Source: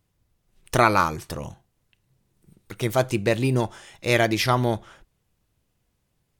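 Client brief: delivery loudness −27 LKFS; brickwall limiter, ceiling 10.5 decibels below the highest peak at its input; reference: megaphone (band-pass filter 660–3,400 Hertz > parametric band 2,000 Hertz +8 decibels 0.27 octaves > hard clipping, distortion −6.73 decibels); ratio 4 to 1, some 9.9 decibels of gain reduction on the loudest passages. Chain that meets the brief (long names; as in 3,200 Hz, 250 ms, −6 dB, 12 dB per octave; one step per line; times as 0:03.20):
downward compressor 4 to 1, threshold −25 dBFS
brickwall limiter −23 dBFS
band-pass filter 660–3,400 Hz
parametric band 2,000 Hz +8 dB 0.27 octaves
hard clipping −35.5 dBFS
level +15.5 dB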